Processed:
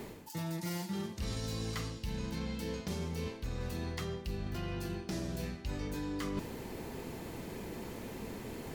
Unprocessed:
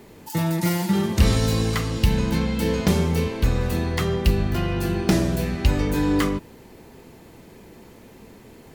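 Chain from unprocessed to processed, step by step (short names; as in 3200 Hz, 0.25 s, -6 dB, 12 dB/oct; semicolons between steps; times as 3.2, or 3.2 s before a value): dynamic EQ 5300 Hz, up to +5 dB, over -47 dBFS, Q 1.1; reverse; compressor 12:1, threshold -38 dBFS, peak gain reduction 27 dB; reverse; gain +3 dB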